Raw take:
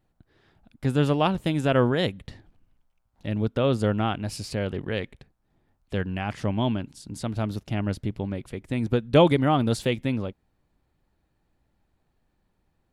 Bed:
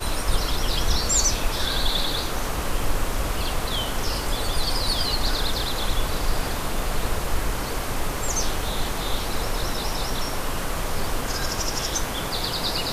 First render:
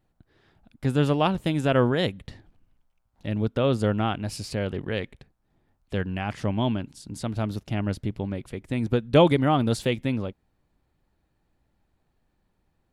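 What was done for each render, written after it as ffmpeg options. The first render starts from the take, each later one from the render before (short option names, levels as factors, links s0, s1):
-af anull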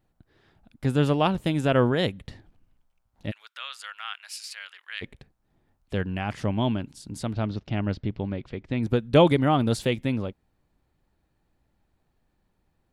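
-filter_complex "[0:a]asplit=3[s0][s1][s2];[s0]afade=t=out:st=3.3:d=0.02[s3];[s1]highpass=f=1400:w=0.5412,highpass=f=1400:w=1.3066,afade=t=in:st=3.3:d=0.02,afade=t=out:st=5.01:d=0.02[s4];[s2]afade=t=in:st=5.01:d=0.02[s5];[s3][s4][s5]amix=inputs=3:normalize=0,asettb=1/sr,asplit=3[s6][s7][s8];[s6]atrim=end=7.334[s9];[s7]atrim=start=7.33:end=8.83,asetpts=PTS-STARTPTS,afade=t=in:d=0.004:c=qsin,afade=t=out:st=1.496:d=0.004:c=qsin,lowpass=f=5000:w=0.5412,lowpass=f=5000:w=1.3066[s10];[s8]atrim=start=8.826[s11];[s9][s10]acrossfade=d=0.004:c1=hsin:c2=qsin[s12];[s12][s11]acrossfade=d=0.004:c1=qsin:c2=hsin"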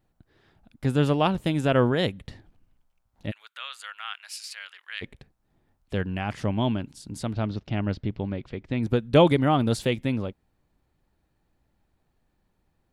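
-filter_complex "[0:a]asettb=1/sr,asplit=3[s0][s1][s2];[s0]atrim=end=3.264[s3];[s1]atrim=start=3.26:end=4.11,asetpts=PTS-STARTPTS,afade=t=in:d=0.004:c=qsin,afade=t=out:st=0.846:d=0.004:c=qsin,equalizer=f=5300:t=o:w=0.22:g=-11.5[s4];[s2]atrim=start=4.106[s5];[s3][s4]acrossfade=d=0.004:c1=hsin:c2=qsin[s6];[s6][s5]acrossfade=d=0.004:c1=qsin:c2=hsin"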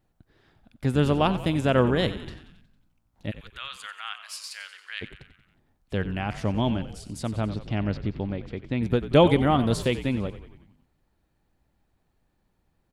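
-filter_complex "[0:a]asplit=7[s0][s1][s2][s3][s4][s5][s6];[s1]adelay=91,afreqshift=-58,volume=0.224[s7];[s2]adelay=182,afreqshift=-116,volume=0.132[s8];[s3]adelay=273,afreqshift=-174,volume=0.0776[s9];[s4]adelay=364,afreqshift=-232,volume=0.0462[s10];[s5]adelay=455,afreqshift=-290,volume=0.0272[s11];[s6]adelay=546,afreqshift=-348,volume=0.016[s12];[s0][s7][s8][s9][s10][s11][s12]amix=inputs=7:normalize=0"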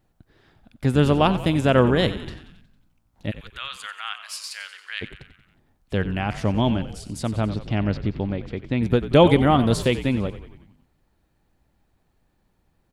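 -af "volume=1.58,alimiter=limit=0.708:level=0:latency=1"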